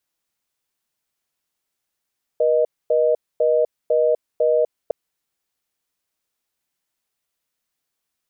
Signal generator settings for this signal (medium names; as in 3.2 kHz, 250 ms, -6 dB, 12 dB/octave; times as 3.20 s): call progress tone reorder tone, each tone -17 dBFS 2.51 s